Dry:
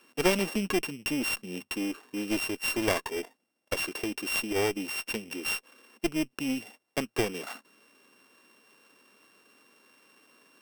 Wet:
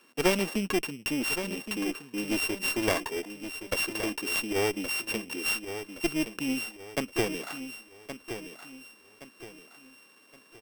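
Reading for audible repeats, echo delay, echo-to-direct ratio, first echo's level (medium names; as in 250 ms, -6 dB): 3, 1120 ms, -9.5 dB, -10.0 dB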